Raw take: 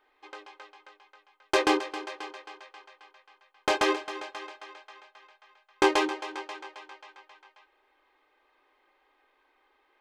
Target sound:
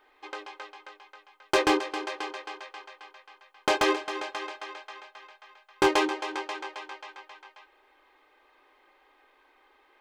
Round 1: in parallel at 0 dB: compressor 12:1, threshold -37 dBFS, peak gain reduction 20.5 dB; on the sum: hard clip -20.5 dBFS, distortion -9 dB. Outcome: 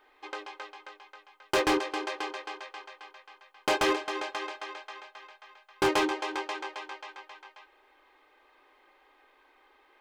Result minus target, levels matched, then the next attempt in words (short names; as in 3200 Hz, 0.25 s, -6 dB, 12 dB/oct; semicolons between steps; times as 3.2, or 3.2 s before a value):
hard clip: distortion +9 dB
in parallel at 0 dB: compressor 12:1, threshold -37 dBFS, peak gain reduction 20.5 dB; on the sum: hard clip -14.5 dBFS, distortion -19 dB